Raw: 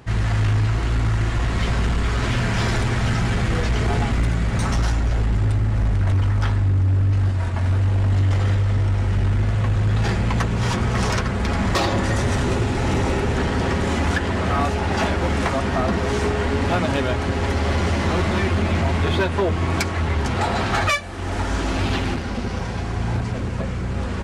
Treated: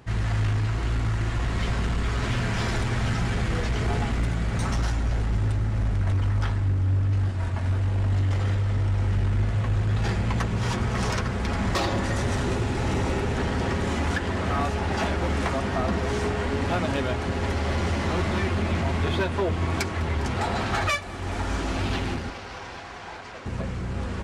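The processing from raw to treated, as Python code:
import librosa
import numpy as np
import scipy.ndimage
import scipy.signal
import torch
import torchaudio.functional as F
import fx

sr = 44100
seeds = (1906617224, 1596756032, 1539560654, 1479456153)

y = fx.bandpass_edges(x, sr, low_hz=630.0, high_hz=6300.0, at=(22.3, 23.46))
y = fx.echo_heads(y, sr, ms=203, heads='all three', feedback_pct=68, wet_db=-22.5)
y = y * 10.0 ** (-5.0 / 20.0)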